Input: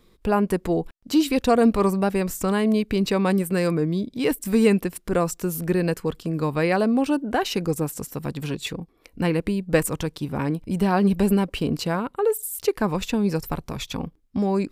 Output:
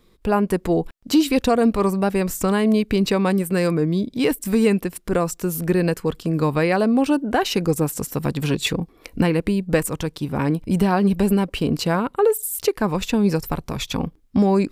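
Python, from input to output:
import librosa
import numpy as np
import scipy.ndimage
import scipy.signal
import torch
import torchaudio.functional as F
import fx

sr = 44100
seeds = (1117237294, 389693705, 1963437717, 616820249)

y = fx.recorder_agc(x, sr, target_db=-8.5, rise_db_per_s=5.7, max_gain_db=30)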